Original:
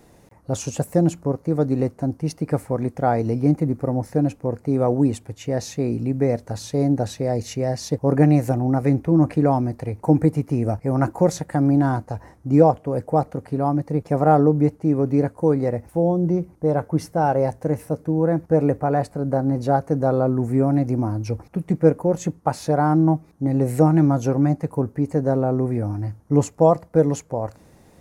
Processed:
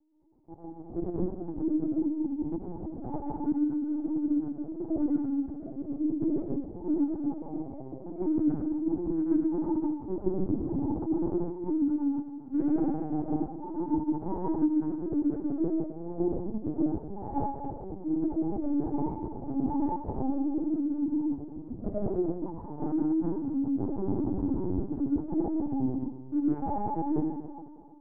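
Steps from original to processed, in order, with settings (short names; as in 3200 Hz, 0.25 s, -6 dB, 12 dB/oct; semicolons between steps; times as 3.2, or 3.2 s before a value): trilling pitch shifter +4 st, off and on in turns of 0.344 s; vocal tract filter u; in parallel at -10 dB: soft clip -21 dBFS, distortion -11 dB; on the sum: bell 1400 Hz +9 dB 1.3 oct; resonator 220 Hz, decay 0.75 s, harmonics all, mix 30%; digital reverb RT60 1.9 s, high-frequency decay 0.95×, pre-delay 55 ms, DRR -6.5 dB; dynamic EQ 160 Hz, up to +4 dB, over -36 dBFS, Q 2.7; de-hum 47.94 Hz, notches 3; gate -23 dBFS, range -6 dB; vocal rider within 3 dB 0.5 s; LPC vocoder at 8 kHz pitch kept; gain -8 dB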